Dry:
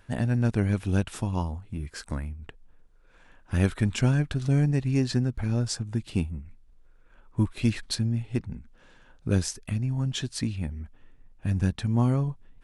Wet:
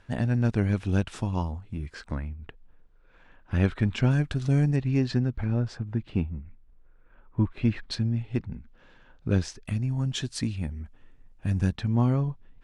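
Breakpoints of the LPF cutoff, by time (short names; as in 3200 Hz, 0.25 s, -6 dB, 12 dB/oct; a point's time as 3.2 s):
6500 Hz
from 1.95 s 3800 Hz
from 4.11 s 8700 Hz
from 4.76 s 4100 Hz
from 5.44 s 2300 Hz
from 7.9 s 4300 Hz
from 9.65 s 10000 Hz
from 11.76 s 4700 Hz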